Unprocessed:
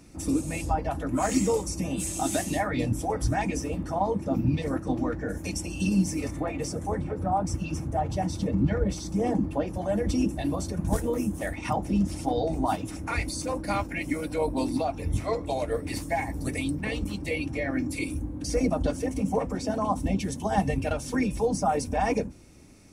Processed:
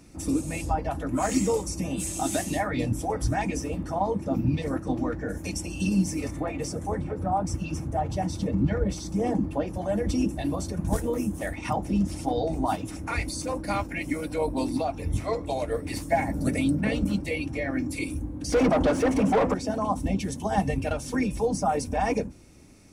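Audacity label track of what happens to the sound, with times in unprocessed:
16.120000	17.210000	small resonant body resonances 200/580/1400 Hz, height 9 dB, ringing for 20 ms
18.520000	19.540000	overdrive pedal drive 27 dB, tone 1.2 kHz, clips at -13 dBFS

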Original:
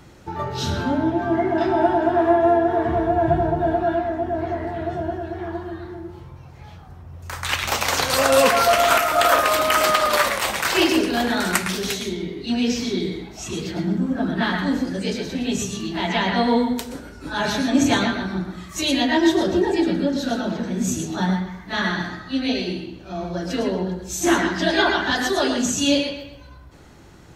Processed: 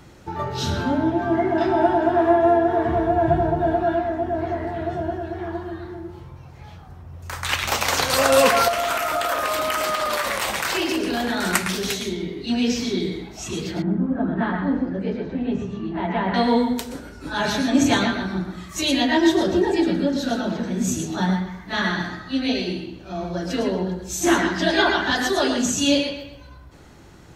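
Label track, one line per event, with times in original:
8.680000	11.430000	compression, threshold -19 dBFS
13.820000	16.340000	low-pass 1.4 kHz

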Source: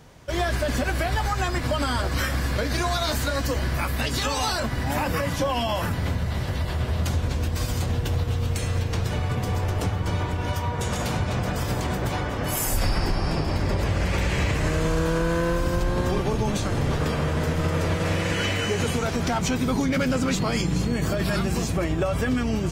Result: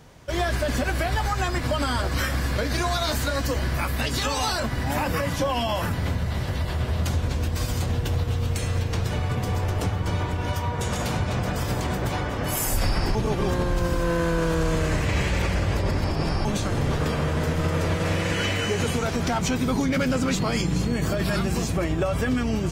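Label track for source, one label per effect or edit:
13.150000	16.450000	reverse

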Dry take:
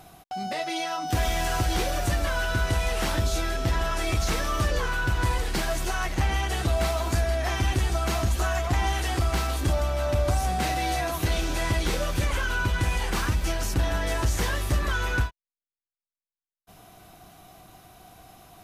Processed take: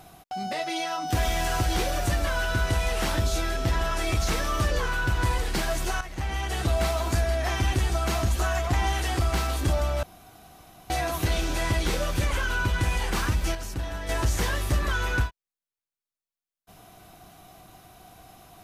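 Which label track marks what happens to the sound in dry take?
6.010000	6.670000	fade in, from -12 dB
10.030000	10.900000	room tone
13.550000	14.090000	gain -7 dB

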